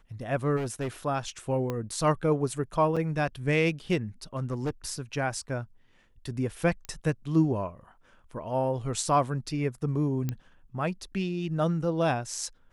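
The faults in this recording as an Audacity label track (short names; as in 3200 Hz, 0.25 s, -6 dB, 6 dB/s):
0.560000	0.880000	clipped -27.5 dBFS
1.700000	1.700000	pop -18 dBFS
2.960000	2.970000	gap 5.8 ms
4.370000	4.700000	clipped -25 dBFS
6.850000	6.850000	pop -23 dBFS
10.290000	10.290000	pop -17 dBFS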